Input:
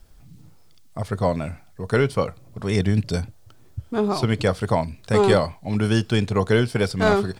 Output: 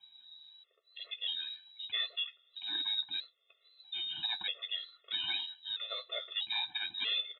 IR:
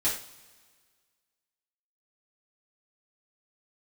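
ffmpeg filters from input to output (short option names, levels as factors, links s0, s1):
-filter_complex "[0:a]asplit=2[s0][s1];[s1]adelay=13,volume=0.224[s2];[s0][s2]amix=inputs=2:normalize=0,asplit=2[s3][s4];[1:a]atrim=start_sample=2205[s5];[s4][s5]afir=irnorm=-1:irlink=0,volume=0.0266[s6];[s3][s6]amix=inputs=2:normalize=0,lowpass=f=3300:t=q:w=0.5098,lowpass=f=3300:t=q:w=0.6013,lowpass=f=3300:t=q:w=0.9,lowpass=f=3300:t=q:w=2.563,afreqshift=-3900,highpass=69,highshelf=f=2900:g=-11,flanger=delay=6.2:depth=5.9:regen=-40:speed=1.8:shape=sinusoidal,asplit=2[s7][s8];[s8]acompressor=threshold=0.00794:ratio=6,volume=1[s9];[s7][s9]amix=inputs=2:normalize=0,afftfilt=real='re*gt(sin(2*PI*0.78*pts/sr)*(1-2*mod(floor(b*sr/1024/360),2)),0)':imag='im*gt(sin(2*PI*0.78*pts/sr)*(1-2*mod(floor(b*sr/1024/360),2)),0)':win_size=1024:overlap=0.75,volume=0.562"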